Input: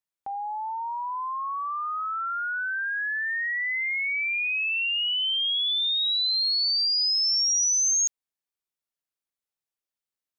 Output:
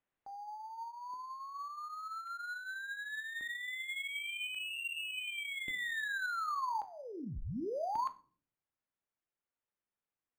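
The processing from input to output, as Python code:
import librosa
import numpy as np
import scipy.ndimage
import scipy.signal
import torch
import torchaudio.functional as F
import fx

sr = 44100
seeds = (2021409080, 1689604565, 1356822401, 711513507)

y = F.preemphasis(torch.from_numpy(x), 0.8).numpy()
y = fx.rider(y, sr, range_db=4, speed_s=0.5)
y = fx.filter_lfo_notch(y, sr, shape='square', hz=0.44, low_hz=290.0, high_hz=4600.0, q=1.6)
y = fx.room_shoebox(y, sr, seeds[0], volume_m3=78.0, walls='mixed', distance_m=0.32)
y = np.interp(np.arange(len(y)), np.arange(len(y))[::8], y[::8])
y = y * librosa.db_to_amplitude(-5.0)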